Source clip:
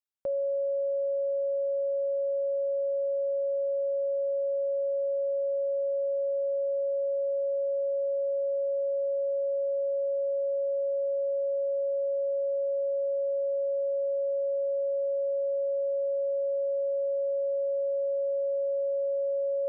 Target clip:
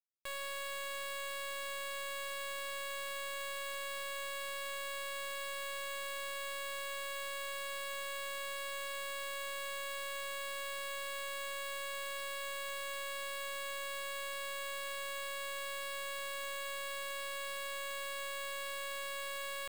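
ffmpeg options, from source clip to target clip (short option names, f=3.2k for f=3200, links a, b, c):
-af "highpass=f=470:p=1,aemphasis=mode=production:type=bsi,alimiter=level_in=10.5dB:limit=-24dB:level=0:latency=1:release=163,volume=-10.5dB,acrusher=bits=3:dc=4:mix=0:aa=0.000001,volume=-2dB"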